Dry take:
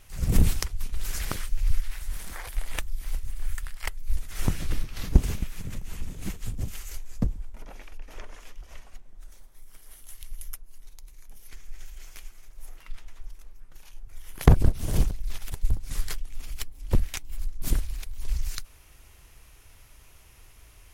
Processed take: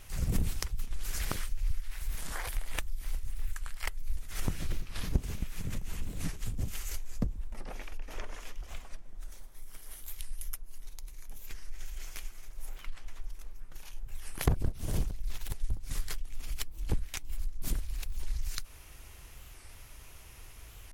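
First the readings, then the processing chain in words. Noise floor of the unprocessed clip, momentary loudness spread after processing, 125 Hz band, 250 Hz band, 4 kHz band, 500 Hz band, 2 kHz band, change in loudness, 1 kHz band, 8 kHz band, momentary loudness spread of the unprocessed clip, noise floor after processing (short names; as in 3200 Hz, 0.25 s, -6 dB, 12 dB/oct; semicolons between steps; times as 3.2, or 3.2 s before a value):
-53 dBFS, 16 LU, -8.0 dB, -8.0 dB, -3.0 dB, -7.5 dB, -3.0 dB, -8.5 dB, -5.5 dB, -3.0 dB, 23 LU, -50 dBFS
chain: compressor 2.5:1, threshold -33 dBFS, peak gain reduction 15.5 dB; record warp 45 rpm, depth 250 cents; gain +2.5 dB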